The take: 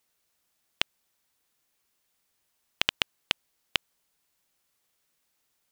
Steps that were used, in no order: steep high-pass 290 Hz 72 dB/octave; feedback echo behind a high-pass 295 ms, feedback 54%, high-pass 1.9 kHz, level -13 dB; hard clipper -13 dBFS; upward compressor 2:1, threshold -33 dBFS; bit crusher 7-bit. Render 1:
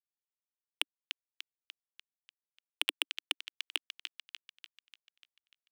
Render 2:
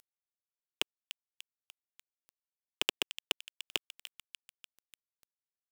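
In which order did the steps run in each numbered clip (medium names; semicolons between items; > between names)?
bit crusher > upward compressor > feedback echo behind a high-pass > hard clipper > steep high-pass; steep high-pass > hard clipper > upward compressor > feedback echo behind a high-pass > bit crusher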